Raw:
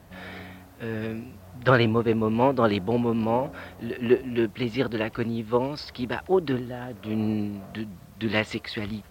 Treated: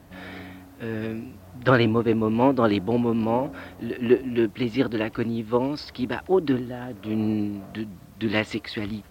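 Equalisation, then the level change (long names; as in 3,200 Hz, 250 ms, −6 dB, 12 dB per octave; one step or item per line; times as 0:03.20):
parametric band 290 Hz +8 dB 0.33 octaves
0.0 dB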